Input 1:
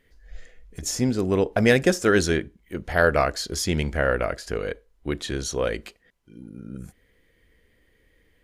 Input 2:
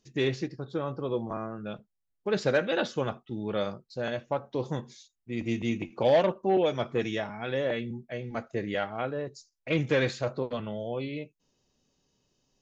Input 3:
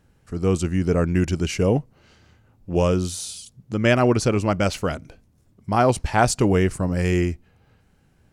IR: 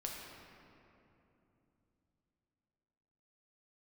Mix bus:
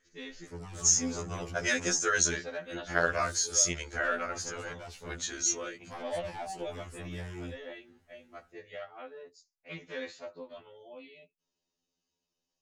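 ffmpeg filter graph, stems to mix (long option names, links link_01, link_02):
-filter_complex "[0:a]lowpass=frequency=6500:width_type=q:width=9.9,equalizer=frequency=1400:width=2:gain=7.5,volume=-7.5dB,afade=type=out:start_time=5.49:duration=0.32:silence=0.316228[link_01];[1:a]volume=-8.5dB[link_02];[2:a]flanger=delay=7:depth=7.3:regen=37:speed=0.54:shape=sinusoidal,acrossover=split=88|1100[link_03][link_04][link_05];[link_03]acompressor=threshold=-39dB:ratio=4[link_06];[link_04]acompressor=threshold=-28dB:ratio=4[link_07];[link_05]acompressor=threshold=-43dB:ratio=4[link_08];[link_06][link_07][link_08]amix=inputs=3:normalize=0,asoftclip=type=tanh:threshold=-30.5dB,adelay=200,volume=-1.5dB[link_09];[link_01][link_02][link_09]amix=inputs=3:normalize=0,lowshelf=frequency=490:gain=-8,afftfilt=real='re*2*eq(mod(b,4),0)':imag='im*2*eq(mod(b,4),0)':win_size=2048:overlap=0.75"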